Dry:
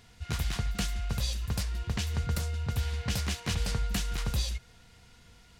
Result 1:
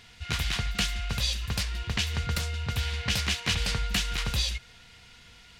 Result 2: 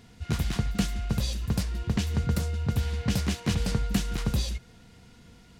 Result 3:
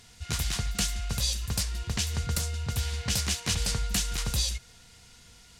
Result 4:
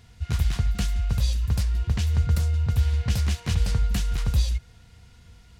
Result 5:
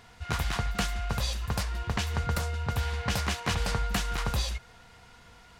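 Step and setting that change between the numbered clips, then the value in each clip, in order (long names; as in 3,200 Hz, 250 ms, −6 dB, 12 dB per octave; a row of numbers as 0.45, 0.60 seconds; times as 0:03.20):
parametric band, centre frequency: 2,800, 240, 7,900, 72, 980 Hertz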